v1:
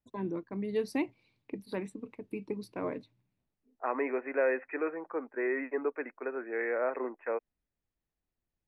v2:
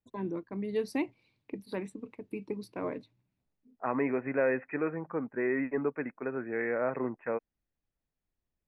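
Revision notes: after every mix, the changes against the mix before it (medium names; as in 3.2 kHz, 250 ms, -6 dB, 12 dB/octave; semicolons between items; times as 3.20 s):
second voice: remove high-pass 320 Hz 24 dB/octave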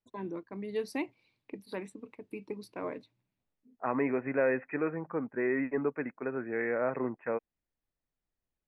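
first voice: add bass shelf 300 Hz -7 dB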